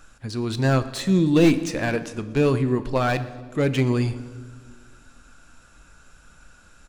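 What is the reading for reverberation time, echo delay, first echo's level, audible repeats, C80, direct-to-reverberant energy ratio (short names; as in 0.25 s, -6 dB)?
1.6 s, 0.119 s, -21.5 dB, 3, 15.0 dB, 11.0 dB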